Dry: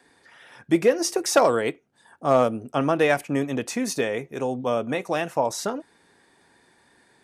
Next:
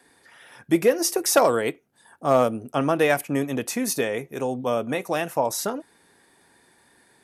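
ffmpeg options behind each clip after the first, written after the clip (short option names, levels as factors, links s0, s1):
-af "equalizer=f=12000:w=1.5:g=13"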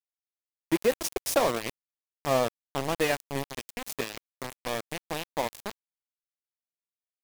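-af "aeval=exprs='val(0)*gte(abs(val(0)),0.112)':c=same,equalizer=f=1400:w=3.5:g=-5.5,volume=0.531"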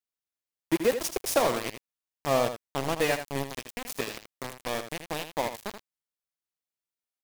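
-af "aecho=1:1:80:0.335"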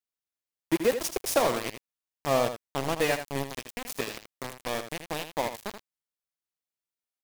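-af anull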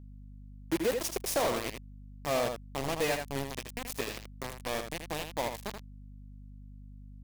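-af "aeval=exprs='val(0)+0.00447*(sin(2*PI*50*n/s)+sin(2*PI*2*50*n/s)/2+sin(2*PI*3*50*n/s)/3+sin(2*PI*4*50*n/s)/4+sin(2*PI*5*50*n/s)/5)':c=same,asoftclip=type=tanh:threshold=0.0708"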